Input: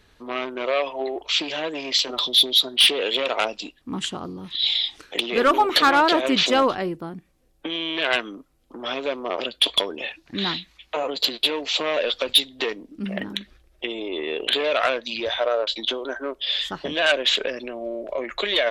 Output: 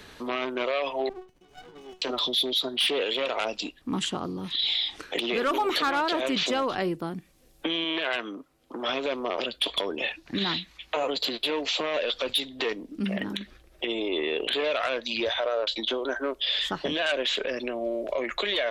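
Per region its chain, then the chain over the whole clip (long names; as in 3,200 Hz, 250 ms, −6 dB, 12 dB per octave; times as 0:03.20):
0:01.09–0:02.02: volume swells 579 ms + resonances in every octave F#, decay 0.21 s + windowed peak hold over 33 samples
0:07.84–0:08.89: high-pass filter 260 Hz 6 dB per octave + high-shelf EQ 4,100 Hz −6.5 dB
whole clip: brickwall limiter −18 dBFS; multiband upward and downward compressor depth 40%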